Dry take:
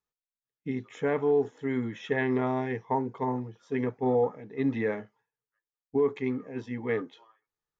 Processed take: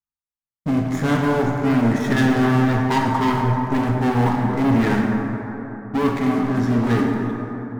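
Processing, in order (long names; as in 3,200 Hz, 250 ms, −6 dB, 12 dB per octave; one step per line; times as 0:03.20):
low-shelf EQ 450 Hz +5.5 dB
phaser with its sweep stopped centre 1,200 Hz, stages 4
leveller curve on the samples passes 5
dense smooth reverb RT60 3.7 s, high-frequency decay 0.35×, DRR −0.5 dB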